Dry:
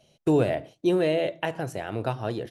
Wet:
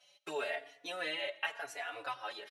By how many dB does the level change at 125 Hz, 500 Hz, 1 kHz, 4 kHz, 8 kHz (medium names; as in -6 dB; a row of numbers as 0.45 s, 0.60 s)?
-36.5 dB, -16.5 dB, -8.0 dB, -1.5 dB, no reading